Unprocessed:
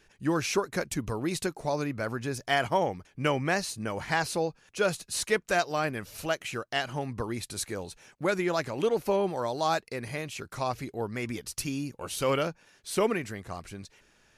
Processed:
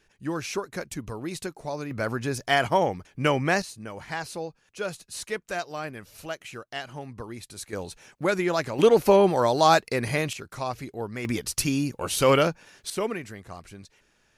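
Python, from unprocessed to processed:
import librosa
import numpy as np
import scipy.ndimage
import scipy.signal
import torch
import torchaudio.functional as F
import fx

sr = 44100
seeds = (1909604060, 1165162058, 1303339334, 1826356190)

y = fx.gain(x, sr, db=fx.steps((0.0, -3.0), (1.91, 4.0), (3.62, -5.0), (7.73, 3.0), (8.79, 9.0), (10.33, 0.0), (11.25, 7.5), (12.9, -2.5)))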